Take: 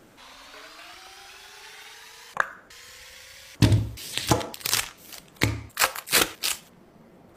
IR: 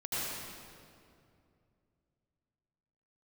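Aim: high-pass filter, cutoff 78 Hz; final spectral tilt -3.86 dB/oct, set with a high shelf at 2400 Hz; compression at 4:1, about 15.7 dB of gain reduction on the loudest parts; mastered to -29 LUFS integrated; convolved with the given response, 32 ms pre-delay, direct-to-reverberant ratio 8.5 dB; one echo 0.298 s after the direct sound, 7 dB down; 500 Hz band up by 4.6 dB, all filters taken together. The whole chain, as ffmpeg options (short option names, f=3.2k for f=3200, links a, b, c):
-filter_complex "[0:a]highpass=78,equalizer=f=500:t=o:g=6,highshelf=f=2.4k:g=-7,acompressor=threshold=-34dB:ratio=4,aecho=1:1:298:0.447,asplit=2[a][b];[1:a]atrim=start_sample=2205,adelay=32[c];[b][c]afir=irnorm=-1:irlink=0,volume=-14.5dB[d];[a][d]amix=inputs=2:normalize=0,volume=10.5dB"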